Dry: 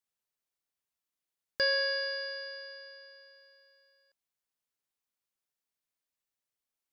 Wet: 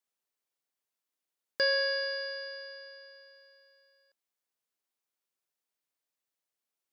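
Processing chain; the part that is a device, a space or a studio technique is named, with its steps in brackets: filter by subtraction (in parallel: low-pass 380 Hz 12 dB/octave + polarity flip)

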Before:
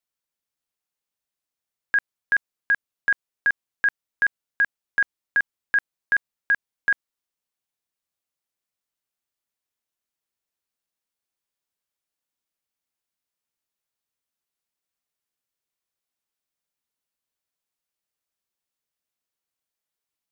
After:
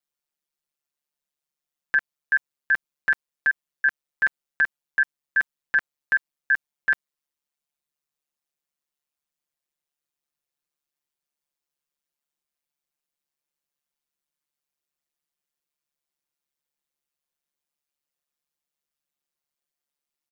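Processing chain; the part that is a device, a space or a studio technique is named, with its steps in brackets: ring-modulated robot voice (ring modulator 72 Hz; comb 5.7 ms)

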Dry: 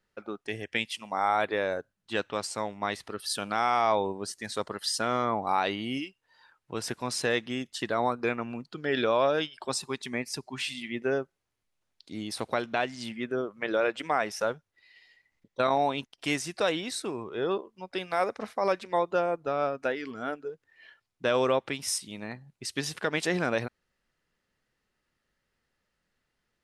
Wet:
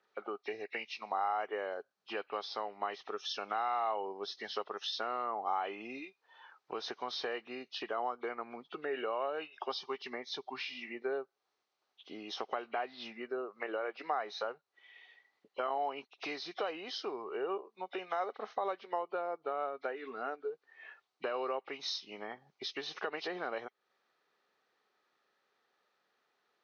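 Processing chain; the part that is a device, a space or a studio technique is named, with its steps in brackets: hearing aid with frequency lowering (knee-point frequency compression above 1.9 kHz 1.5:1; compression 3:1, threshold -42 dBFS, peak gain reduction 16 dB; cabinet simulation 370–6700 Hz, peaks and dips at 410 Hz +7 dB, 770 Hz +8 dB, 1.2 kHz +7 dB, 4.2 kHz +5 dB); trim +1 dB

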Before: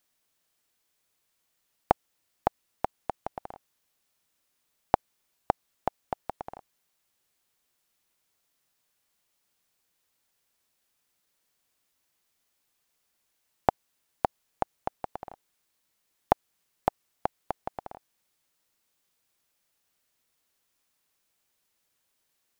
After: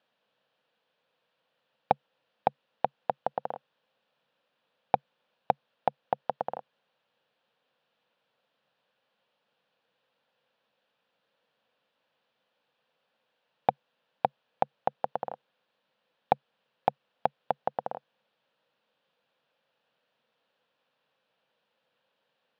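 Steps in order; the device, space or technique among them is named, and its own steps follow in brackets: overdrive pedal into a guitar cabinet (overdrive pedal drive 21 dB, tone 3 kHz, clips at -2 dBFS; cabinet simulation 94–3500 Hz, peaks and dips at 140 Hz +9 dB, 210 Hz +7 dB, 360 Hz -6 dB, 510 Hz +10 dB, 1.2 kHz -4 dB, 2.1 kHz -10 dB); trim -5.5 dB

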